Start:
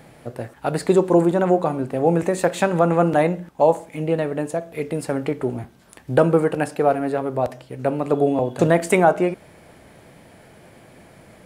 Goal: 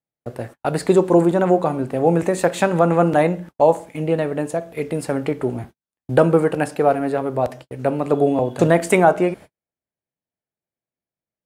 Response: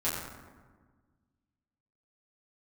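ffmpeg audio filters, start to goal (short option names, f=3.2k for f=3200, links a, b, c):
-af "agate=range=-49dB:threshold=-37dB:ratio=16:detection=peak,volume=1.5dB"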